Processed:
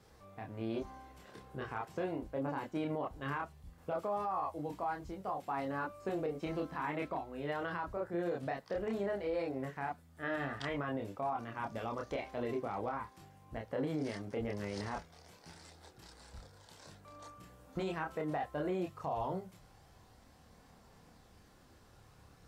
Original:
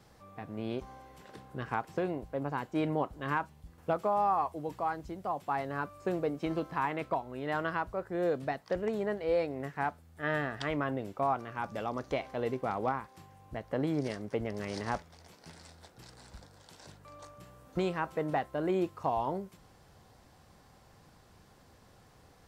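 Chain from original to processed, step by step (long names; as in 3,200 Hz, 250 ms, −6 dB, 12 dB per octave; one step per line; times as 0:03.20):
multi-voice chorus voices 4, 0.15 Hz, delay 28 ms, depth 2.3 ms
brickwall limiter −29 dBFS, peak gain reduction 9 dB
level +1 dB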